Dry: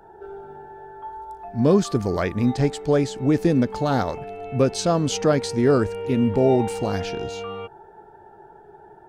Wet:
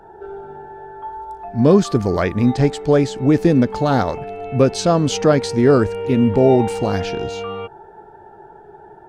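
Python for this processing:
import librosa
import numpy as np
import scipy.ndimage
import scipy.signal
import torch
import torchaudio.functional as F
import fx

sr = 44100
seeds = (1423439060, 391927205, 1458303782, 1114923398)

y = fx.high_shelf(x, sr, hz=6900.0, db=-6.0)
y = y * librosa.db_to_amplitude(5.0)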